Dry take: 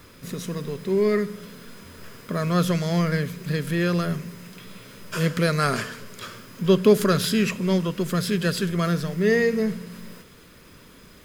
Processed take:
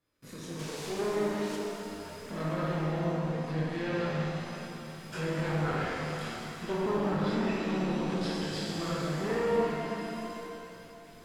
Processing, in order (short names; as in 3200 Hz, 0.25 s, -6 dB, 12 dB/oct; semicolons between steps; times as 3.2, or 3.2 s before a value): in parallel at -10 dB: sample-rate reducer 1400 Hz, jitter 0%; 2.9–3.32 on the sum: band shelf 2500 Hz -15.5 dB 2.3 oct; 8.03–8.77 negative-ratio compressor -26 dBFS, ratio -0.5; flutter echo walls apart 9.9 m, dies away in 0.74 s; gate with hold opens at -35 dBFS; chorus voices 6, 0.33 Hz, delay 23 ms, depth 4.2 ms; tube stage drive 22 dB, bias 0.6; 0.59–1.56 requantised 6-bit, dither triangular; treble ducked by the level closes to 550 Hz, closed at -18.5 dBFS; low shelf 130 Hz -6.5 dB; shimmer reverb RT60 3 s, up +7 st, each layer -8 dB, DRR -2.5 dB; gain -6 dB